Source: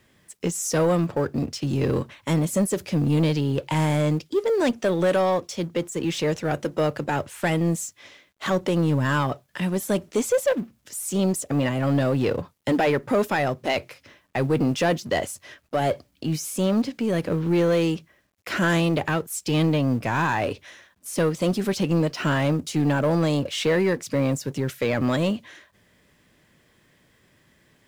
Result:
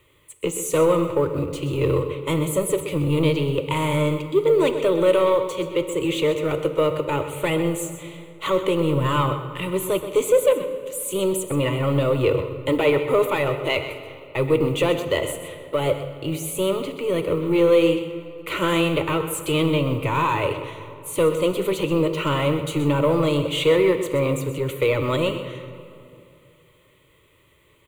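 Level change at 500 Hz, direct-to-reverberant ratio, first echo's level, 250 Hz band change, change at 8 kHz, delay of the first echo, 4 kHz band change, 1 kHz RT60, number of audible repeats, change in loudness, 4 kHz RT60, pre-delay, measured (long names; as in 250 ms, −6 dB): +4.5 dB, 7.5 dB, −12.0 dB, −0.5 dB, 0.0 dB, 127 ms, +3.5 dB, 2.5 s, 1, +2.0 dB, 1.6 s, 15 ms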